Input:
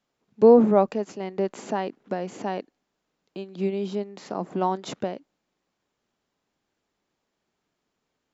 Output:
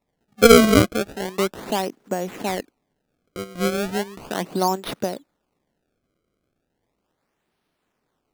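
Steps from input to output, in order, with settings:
high-shelf EQ 4,700 Hz +6 dB
sample-and-hold swept by an LFO 28×, swing 160% 0.36 Hz
level +3.5 dB

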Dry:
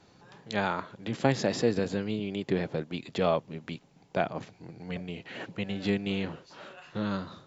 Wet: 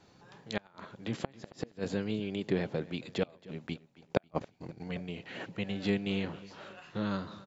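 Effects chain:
gate with flip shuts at −15 dBFS, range −32 dB
0:03.67–0:04.88: transient designer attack +8 dB, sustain −11 dB
on a send: repeating echo 272 ms, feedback 40%, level −20 dB
on the sum: level −2 dB

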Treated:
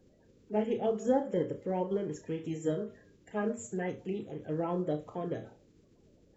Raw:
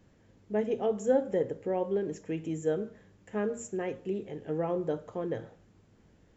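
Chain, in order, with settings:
spectral magnitudes quantised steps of 30 dB
flutter between parallel walls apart 5.7 metres, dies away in 0.23 s
level −1.5 dB

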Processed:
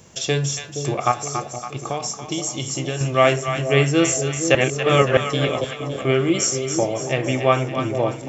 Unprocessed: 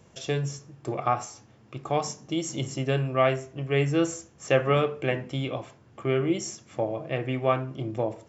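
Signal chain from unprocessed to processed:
high-shelf EQ 3,600 Hz +11.5 dB
0:01.11–0:03.01: downward compressor 6 to 1, threshold −29 dBFS, peak gain reduction 10 dB
0:04.55–0:05.17: reverse
echo with a time of its own for lows and highs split 670 Hz, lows 471 ms, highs 281 ms, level −7.5 dB
level +6 dB

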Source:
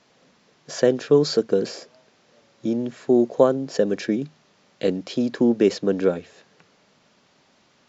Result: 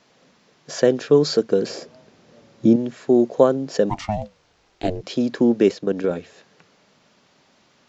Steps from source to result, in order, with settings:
0:01.70–0:02.76: low-shelf EQ 460 Hz +11 dB
0:03.89–0:05.02: ring modulation 540 Hz → 160 Hz
0:05.71–0:06.11: output level in coarse steps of 10 dB
level +1.5 dB

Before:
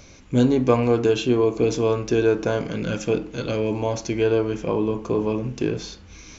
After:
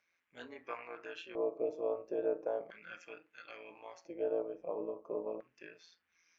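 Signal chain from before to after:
noise reduction from a noise print of the clip's start 11 dB
amplitude modulation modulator 170 Hz, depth 50%
auto-filter band-pass square 0.37 Hz 590–1,800 Hz
level −6.5 dB

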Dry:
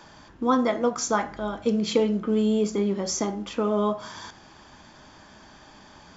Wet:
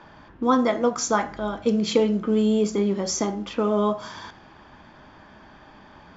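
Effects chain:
low-pass that shuts in the quiet parts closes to 2,400 Hz, open at −22 dBFS
level +2 dB

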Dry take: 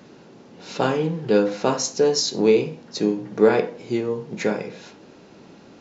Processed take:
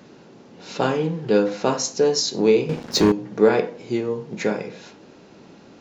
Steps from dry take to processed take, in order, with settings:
0:02.69–0:03.12: leveller curve on the samples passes 3

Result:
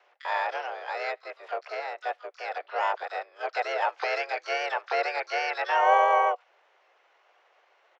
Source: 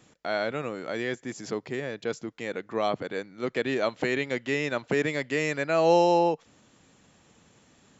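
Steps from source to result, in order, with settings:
single-sideband voice off tune +270 Hz 350–2,700 Hz
pitch-shifted copies added −7 semitones −8 dB, −4 semitones −9 dB, +12 semitones −11 dB
level −1 dB

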